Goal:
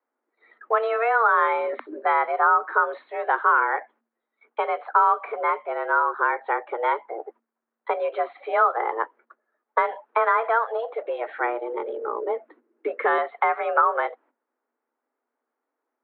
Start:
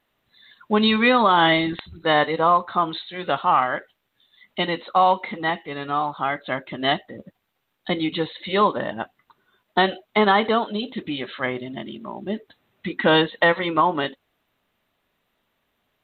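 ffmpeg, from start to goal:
ffmpeg -i in.wav -filter_complex "[0:a]agate=range=-14dB:threshold=-53dB:ratio=16:detection=peak,asettb=1/sr,asplit=3[link_01][link_02][link_03];[link_01]atrim=end=11.064[link_04];[link_02]atrim=start=11.06:end=13.18,asetpts=PTS-STARTPTS,afade=type=in:duration=0.004:curve=qsin,afade=type=out:start_time=2.116:duration=0.004:curve=qsin,asubboost=boost=11.5:cutoff=180[link_05];[link_03]atrim=start=13.176[link_06];[link_04][link_05]acrossfade=duration=0.004:curve1=hsin:curve2=qsin[link_07];[link_07][link_06]acrossfade=duration=0.004:curve1=qsin:curve2=hsin,acrossover=split=450|940[link_08][link_09][link_10];[link_08]acompressor=threshold=-35dB:ratio=4[link_11];[link_09]acompressor=threshold=-32dB:ratio=4[link_12];[link_10]acompressor=threshold=-24dB:ratio=4[link_13];[link_11][link_12][link_13]amix=inputs=3:normalize=0,afreqshift=230,lowpass=frequency=1600:width=0.5412,lowpass=frequency=1600:width=1.3066,volume=6dB" out.wav

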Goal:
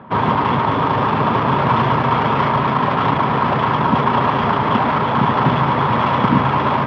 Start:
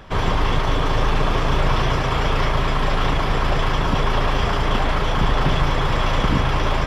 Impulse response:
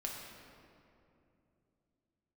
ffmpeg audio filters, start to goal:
-af "adynamicsmooth=sensitivity=1.5:basefreq=1600,highpass=frequency=110:width=0.5412,highpass=frequency=110:width=1.3066,equalizer=frequency=120:width_type=q:width=4:gain=3,equalizer=frequency=230:width_type=q:width=4:gain=9,equalizer=frequency=950:width_type=q:width=4:gain=9,equalizer=frequency=1300:width_type=q:width=4:gain=3,lowpass=frequency=4500:width=0.5412,lowpass=frequency=4500:width=1.3066,volume=3dB"

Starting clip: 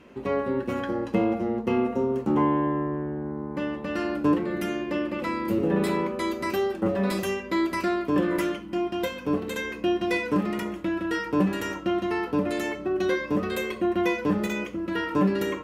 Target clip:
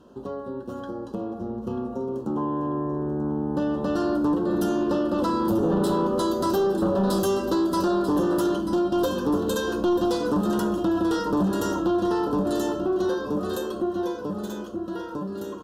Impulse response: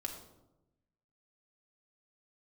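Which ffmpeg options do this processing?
-filter_complex "[0:a]acompressor=threshold=-32dB:ratio=2.5,asplit=3[link_01][link_02][link_03];[link_01]afade=type=out:start_time=1.38:duration=0.02[link_04];[link_02]asubboost=boost=3.5:cutoff=230,afade=type=in:start_time=1.38:duration=0.02,afade=type=out:start_time=1.93:duration=0.02[link_05];[link_03]afade=type=in:start_time=1.93:duration=0.02[link_06];[link_04][link_05][link_06]amix=inputs=3:normalize=0,dynaudnorm=framelen=380:gausssize=17:maxgain=13dB,aecho=1:1:939|1878|2817|3756:0.251|0.098|0.0382|0.0149,aeval=exprs='0.447*(cos(1*acos(clip(val(0)/0.447,-1,1)))-cos(1*PI/2))+0.0891*(cos(5*acos(clip(val(0)/0.447,-1,1)))-cos(5*PI/2))':channel_layout=same,asuperstop=centerf=2200:order=4:qfactor=1.1,volume=-6.5dB"

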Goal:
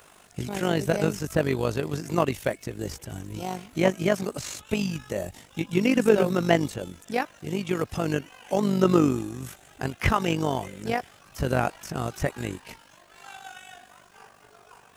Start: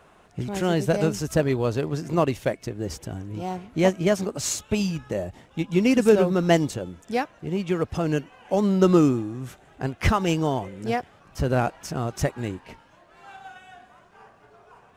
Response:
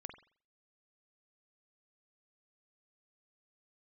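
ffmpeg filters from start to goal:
-filter_complex "[0:a]crystalizer=i=5.5:c=0,acrossover=split=2600[link_01][link_02];[link_02]acompressor=threshold=-38dB:ratio=4:attack=1:release=60[link_03];[link_01][link_03]amix=inputs=2:normalize=0,tremolo=f=49:d=0.667"

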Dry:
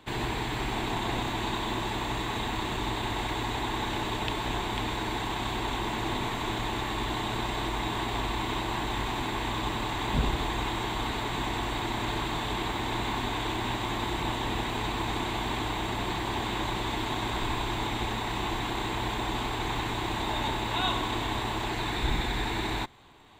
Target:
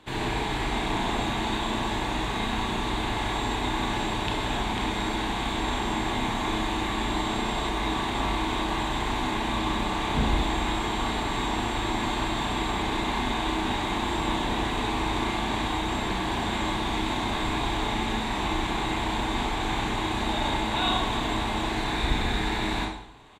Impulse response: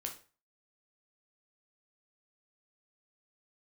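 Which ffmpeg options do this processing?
-filter_complex "[0:a]asplit=2[link_01][link_02];[link_02]adelay=37,volume=-14dB[link_03];[link_01][link_03]amix=inputs=2:normalize=0[link_04];[1:a]atrim=start_sample=2205,asetrate=23814,aresample=44100[link_05];[link_04][link_05]afir=irnorm=-1:irlink=0"

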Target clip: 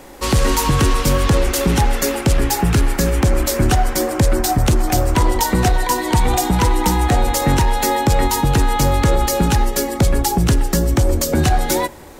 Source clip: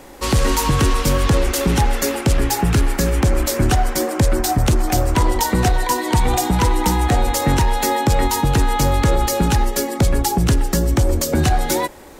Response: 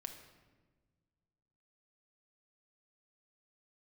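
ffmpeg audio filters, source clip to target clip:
-filter_complex "[0:a]asplit=2[link_01][link_02];[1:a]atrim=start_sample=2205,highshelf=frequency=11000:gain=9.5[link_03];[link_02][link_03]afir=irnorm=-1:irlink=0,volume=-13.5dB[link_04];[link_01][link_04]amix=inputs=2:normalize=0"

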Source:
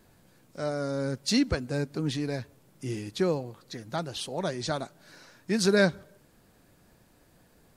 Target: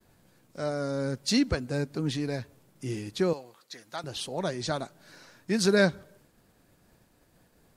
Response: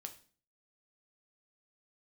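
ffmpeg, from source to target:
-filter_complex "[0:a]asettb=1/sr,asplit=3[link_01][link_02][link_03];[link_01]atrim=end=3.334[link_04];[link_02]atrim=start=3.33:end=4.04,asetpts=PTS-STARTPTS,afade=type=in:duration=0.004:curve=qsin,afade=type=out:start_time=0.706:duration=0.004:curve=qsin,highpass=frequency=1100:poles=1[link_05];[link_03]atrim=start=4.036[link_06];[link_04][link_05]acrossfade=duration=0.004:curve1=hsin:curve2=qsin[link_07];[link_07][link_06]acrossfade=duration=0.004:curve1=qsin:curve2=hsin,agate=range=-33dB:threshold=-57dB:ratio=3:detection=peak"

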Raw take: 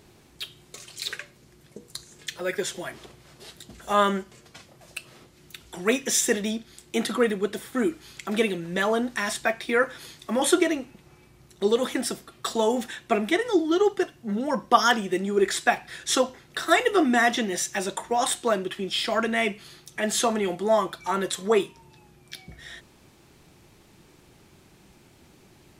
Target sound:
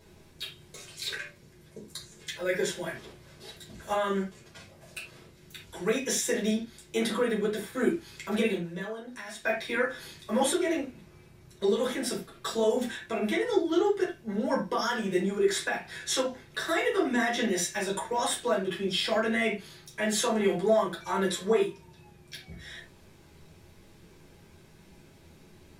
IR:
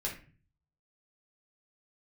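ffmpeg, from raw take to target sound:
-filter_complex "[0:a]asettb=1/sr,asplit=3[link_01][link_02][link_03];[link_01]atrim=end=8.574[link_04];[link_02]atrim=start=8.57:end=9.45,asetpts=PTS-STARTPTS,afade=type=in:duration=0.004:curve=qsin,afade=type=out:start_time=0.876:duration=0.004:curve=qsin,acompressor=threshold=-37dB:ratio=5[link_05];[link_03]atrim=start=9.446[link_06];[link_04][link_05]acrossfade=duration=0.004:curve1=hsin:curve2=qsin[link_07];[link_07][link_06]acrossfade=duration=0.004:curve1=qsin:curve2=hsin,alimiter=limit=-15.5dB:level=0:latency=1:release=134[link_08];[1:a]atrim=start_sample=2205,atrim=end_sample=4410[link_09];[link_08][link_09]afir=irnorm=-1:irlink=0,volume=-3.5dB"

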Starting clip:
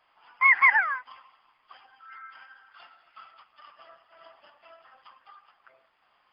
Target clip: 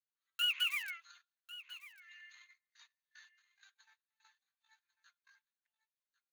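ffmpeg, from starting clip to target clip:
ffmpeg -i in.wav -filter_complex "[0:a]highpass=frequency=230:poles=1,acrossover=split=790|2300[link_01][link_02][link_03];[link_01]aeval=exprs='(mod(100*val(0)+1,2)-1)/100':channel_layout=same[link_04];[link_04][link_02][link_03]amix=inputs=3:normalize=0,agate=range=-27dB:threshold=-50dB:ratio=16:detection=peak,adynamicequalizer=threshold=0.0141:dfrequency=1300:dqfactor=1.3:tfrequency=1300:tqfactor=1.3:attack=5:release=100:ratio=0.375:range=2:mode=cutabove:tftype=bell,acompressor=threshold=-22dB:ratio=4,asetrate=58866,aresample=44100,atempo=0.749154,aderivative,aecho=1:1:1097:0.141" out.wav

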